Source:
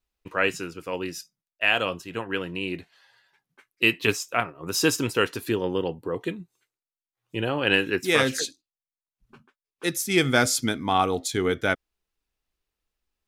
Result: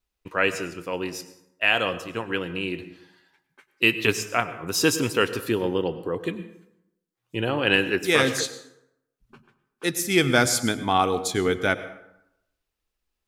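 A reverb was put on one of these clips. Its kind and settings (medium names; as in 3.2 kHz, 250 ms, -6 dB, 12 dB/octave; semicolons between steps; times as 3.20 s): plate-style reverb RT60 0.82 s, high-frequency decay 0.6×, pre-delay 85 ms, DRR 13 dB; trim +1 dB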